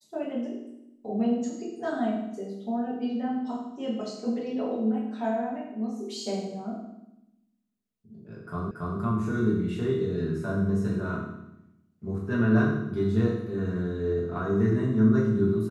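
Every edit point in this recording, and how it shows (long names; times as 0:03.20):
0:08.71: the same again, the last 0.28 s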